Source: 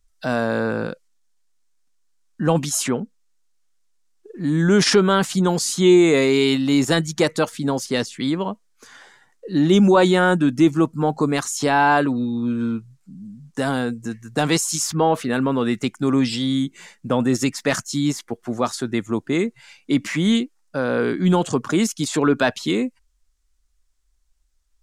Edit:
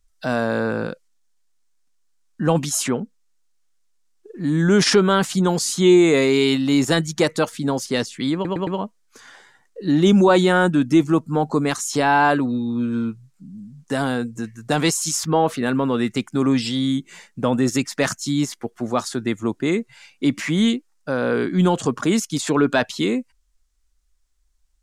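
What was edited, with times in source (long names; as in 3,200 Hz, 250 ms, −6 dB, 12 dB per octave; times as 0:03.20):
0:08.34: stutter 0.11 s, 4 plays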